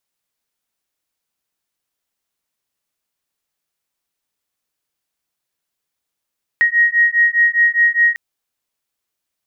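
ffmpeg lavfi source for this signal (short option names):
-f lavfi -i "aevalsrc='0.2*(sin(2*PI*1880*t)+sin(2*PI*1884.9*t))':d=1.55:s=44100"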